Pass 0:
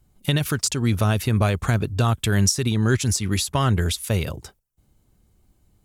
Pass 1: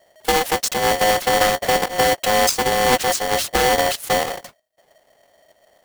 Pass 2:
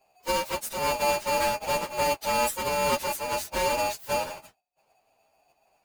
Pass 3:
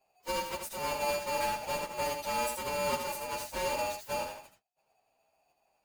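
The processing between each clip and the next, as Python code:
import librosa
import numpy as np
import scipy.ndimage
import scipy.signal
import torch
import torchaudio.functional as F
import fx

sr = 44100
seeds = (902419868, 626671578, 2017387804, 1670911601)

y1 = fx.halfwave_hold(x, sr)
y1 = y1 * np.sign(np.sin(2.0 * np.pi * 630.0 * np.arange(len(y1)) / sr))
y1 = F.gain(torch.from_numpy(y1), -2.0).numpy()
y2 = fx.partial_stretch(y1, sr, pct=115)
y2 = F.gain(torch.from_numpy(y2), -6.5).numpy()
y3 = y2 + 10.0 ** (-6.5 / 20.0) * np.pad(y2, (int(79 * sr / 1000.0), 0))[:len(y2)]
y3 = F.gain(torch.from_numpy(y3), -7.5).numpy()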